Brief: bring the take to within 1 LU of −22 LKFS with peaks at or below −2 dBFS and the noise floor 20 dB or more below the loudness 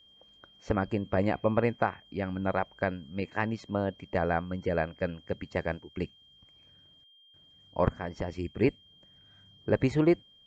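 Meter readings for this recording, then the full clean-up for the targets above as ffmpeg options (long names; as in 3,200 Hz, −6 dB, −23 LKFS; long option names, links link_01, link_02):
interfering tone 3,200 Hz; level of the tone −57 dBFS; integrated loudness −31.0 LKFS; sample peak −12.0 dBFS; target loudness −22.0 LKFS
→ -af "bandreject=frequency=3200:width=30"
-af "volume=9dB"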